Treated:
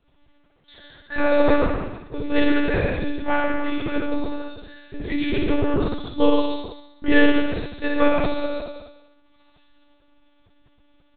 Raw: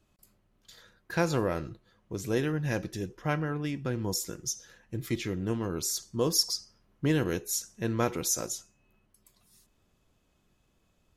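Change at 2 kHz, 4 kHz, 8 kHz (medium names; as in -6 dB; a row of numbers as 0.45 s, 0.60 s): +12.5 dB, +1.5 dB, under -40 dB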